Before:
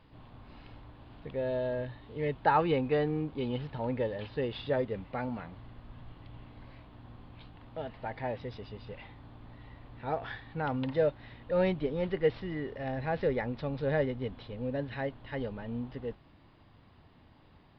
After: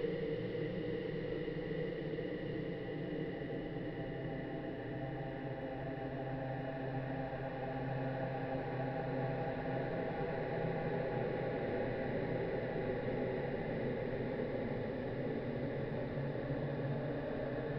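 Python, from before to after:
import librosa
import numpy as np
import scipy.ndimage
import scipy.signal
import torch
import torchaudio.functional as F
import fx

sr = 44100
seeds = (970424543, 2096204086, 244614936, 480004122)

y = fx.spec_steps(x, sr, hold_ms=200)
y = fx.paulstretch(y, sr, seeds[0], factor=13.0, window_s=1.0, from_s=12.35)
y = fx.dmg_crackle(y, sr, seeds[1], per_s=300.0, level_db=-69.0)
y = F.gain(torch.from_numpy(y), -3.5).numpy()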